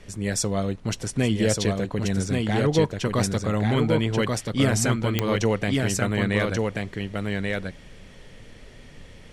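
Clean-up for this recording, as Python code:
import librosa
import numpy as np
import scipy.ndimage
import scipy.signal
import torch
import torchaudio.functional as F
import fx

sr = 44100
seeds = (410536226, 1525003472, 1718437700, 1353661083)

y = fx.fix_declick_ar(x, sr, threshold=10.0)
y = fx.noise_reduce(y, sr, print_start_s=8.44, print_end_s=8.94, reduce_db=25.0)
y = fx.fix_echo_inverse(y, sr, delay_ms=1134, level_db=-3.0)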